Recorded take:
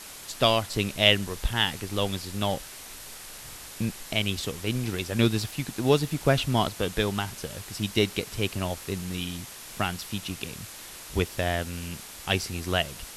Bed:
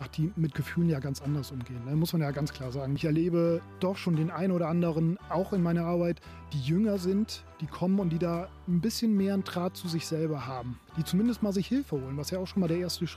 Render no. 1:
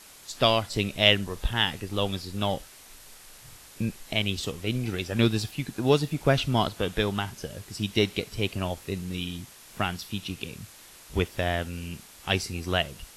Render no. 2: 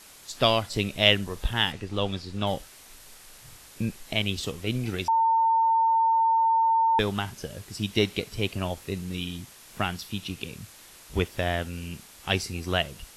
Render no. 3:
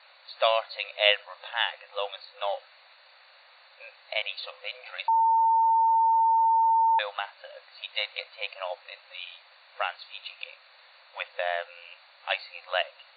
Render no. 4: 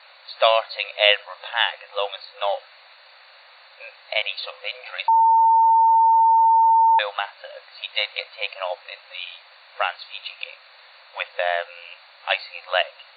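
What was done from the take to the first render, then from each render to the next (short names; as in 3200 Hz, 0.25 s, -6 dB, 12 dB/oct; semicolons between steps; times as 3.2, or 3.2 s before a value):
noise print and reduce 7 dB
1.72–2.47 air absorption 63 m; 5.08–6.99 bleep 904 Hz -18.5 dBFS
notch 3200 Hz, Q 6.7; FFT band-pass 500–4600 Hz
gain +6.5 dB; limiter -1 dBFS, peak gain reduction 2.5 dB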